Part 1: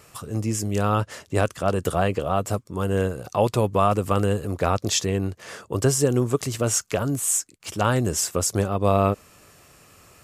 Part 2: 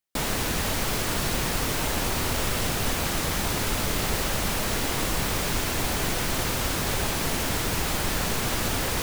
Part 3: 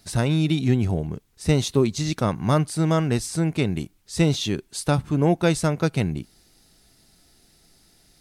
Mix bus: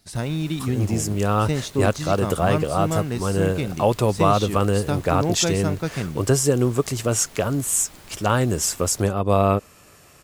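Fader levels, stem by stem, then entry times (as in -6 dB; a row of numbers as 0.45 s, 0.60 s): +1.5 dB, -19.5 dB, -4.5 dB; 0.45 s, 0.00 s, 0.00 s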